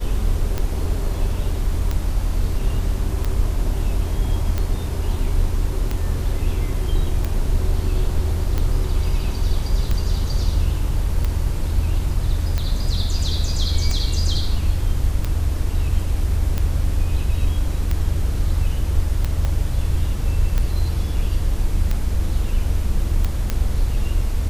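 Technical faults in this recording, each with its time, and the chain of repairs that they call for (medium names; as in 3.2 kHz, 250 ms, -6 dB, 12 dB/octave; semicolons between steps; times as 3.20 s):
tick 45 rpm -10 dBFS
19.45 s: pop -12 dBFS
23.50 s: pop -8 dBFS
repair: de-click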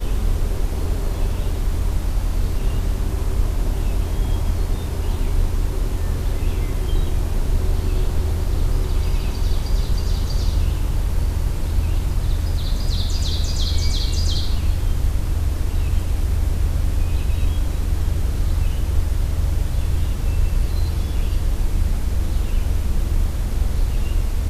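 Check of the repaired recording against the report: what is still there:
19.45 s: pop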